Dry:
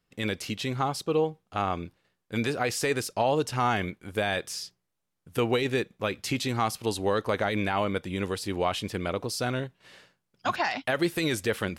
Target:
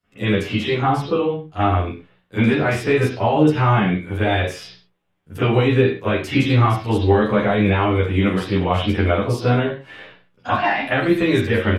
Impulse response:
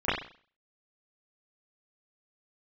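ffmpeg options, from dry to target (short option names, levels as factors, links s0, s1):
-filter_complex "[0:a]acrossover=split=280[s0][s1];[s1]acompressor=threshold=0.0224:ratio=2.5[s2];[s0][s2]amix=inputs=2:normalize=0[s3];[1:a]atrim=start_sample=2205,afade=t=out:st=0.24:d=0.01,atrim=end_sample=11025[s4];[s3][s4]afir=irnorm=-1:irlink=0,asplit=2[s5][s6];[s6]adelay=11,afreqshift=-1.1[s7];[s5][s7]amix=inputs=2:normalize=1,volume=1.41"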